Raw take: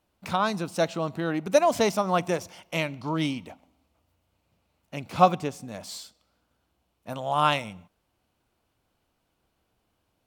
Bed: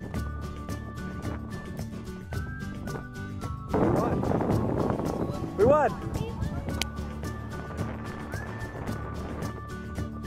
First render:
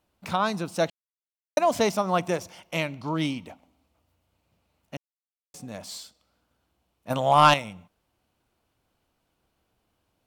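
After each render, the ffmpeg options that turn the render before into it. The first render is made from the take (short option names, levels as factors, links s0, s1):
-filter_complex "[0:a]asettb=1/sr,asplit=3[s0][s1][s2];[s0]atrim=end=7.104[s3];[s1]atrim=start=7.1:end=7.54,asetpts=PTS-STARTPTS,afade=t=in:d=0.004:c=qsin,afade=t=out:st=0.436:d=0.004:c=qsin,aeval=exprs='0.422*sin(PI/2*1.58*val(0)/0.422)':c=same[s4];[s2]atrim=start=7.536[s5];[s3][s4]acrossfade=d=0.004:c1=hsin:c2=qsin[s6];[s6][s5]acrossfade=d=0.004:c1=qsin:c2=hsin,asplit=5[s7][s8][s9][s10][s11];[s7]atrim=end=0.9,asetpts=PTS-STARTPTS,afade=t=out:st=0.896:d=0.004:c=hsin[s12];[s8]atrim=start=0.9:end=1.57,asetpts=PTS-STARTPTS,volume=0[s13];[s9]atrim=start=1.57:end=4.97,asetpts=PTS-STARTPTS,afade=t=in:d=0.004:c=hsin,afade=t=out:st=3.396:d=0.004:c=hsin[s14];[s10]atrim=start=4.97:end=5.54,asetpts=PTS-STARTPTS,volume=0[s15];[s11]atrim=start=5.54,asetpts=PTS-STARTPTS,afade=t=in:d=0.004:c=hsin[s16];[s12][s13][s14][s15][s16]concat=n=5:v=0:a=1"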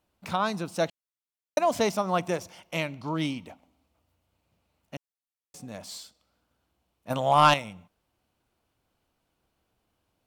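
-af "volume=0.794"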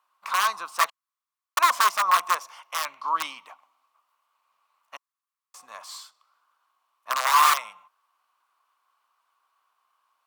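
-af "aeval=exprs='(mod(8.91*val(0)+1,2)-1)/8.91':c=same,highpass=f=1100:t=q:w=8.7"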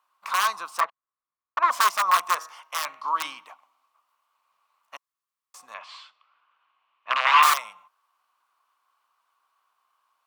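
-filter_complex "[0:a]asettb=1/sr,asplit=3[s0][s1][s2];[s0]atrim=end=0.804[s3];[s1]atrim=start=0.8:end=1.71,asetpts=PTS-STARTPTS,afade=t=in:d=0.004:c=qsin,afade=t=out:st=0.906:d=0.004:c=qsin,lowpass=1600[s4];[s2]atrim=start=1.706[s5];[s3][s4]acrossfade=d=0.004:c1=hsin:c2=qsin[s6];[s6][s5]acrossfade=d=0.004:c1=qsin:c2=hsin,asettb=1/sr,asplit=3[s7][s8][s9];[s7]atrim=end=2.254[s10];[s8]atrim=start=2.25:end=3.44,asetpts=PTS-STARTPTS,afade=t=in:d=0.004:c=qsin,afade=t=out:st=1.186:d=0.004:c=qsin,bandreject=f=157.6:t=h:w=4,bandreject=f=315.2:t=h:w=4,bandreject=f=472.8:t=h:w=4,bandreject=f=630.4:t=h:w=4,bandreject=f=788:t=h:w=4,bandreject=f=945.6:t=h:w=4,bandreject=f=1103.2:t=h:w=4,bandreject=f=1260.8:t=h:w=4,bandreject=f=1418.4:t=h:w=4,bandreject=f=1576:t=h:w=4,bandreject=f=1733.6:t=h:w=4,bandreject=f=1891.2:t=h:w=4[s11];[s9]atrim=start=3.436[s12];[s10][s11]acrossfade=d=0.004:c1=hsin:c2=qsin[s13];[s13][s12]acrossfade=d=0.004:c1=qsin:c2=hsin,asettb=1/sr,asplit=3[s14][s15][s16];[s14]atrim=end=5.744[s17];[s15]atrim=start=5.74:end=7.43,asetpts=PTS-STARTPTS,afade=t=in:d=0.004:c=qsin,afade=t=out:st=1.686:d=0.004:c=qsin,lowpass=f=2700:t=q:w=2.9[s18];[s16]atrim=start=7.426[s19];[s17][s18]acrossfade=d=0.004:c1=hsin:c2=qsin[s20];[s20][s19]acrossfade=d=0.004:c1=qsin:c2=hsin"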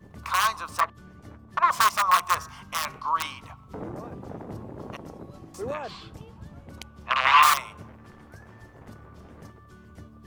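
-filter_complex "[1:a]volume=0.237[s0];[0:a][s0]amix=inputs=2:normalize=0"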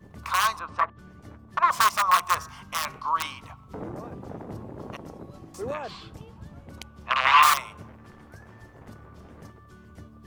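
-filter_complex "[0:a]asettb=1/sr,asplit=3[s0][s1][s2];[s0]atrim=end=0.594[s3];[s1]atrim=start=0.59:end=0.99,asetpts=PTS-STARTPTS,afade=t=in:d=0.004:c=qsin,afade=t=out:st=0.396:d=0.004:c=qsin,lowpass=2300[s4];[s2]atrim=start=0.986[s5];[s3][s4]acrossfade=d=0.004:c1=hsin:c2=qsin[s6];[s6][s5]acrossfade=d=0.004:c1=qsin:c2=hsin"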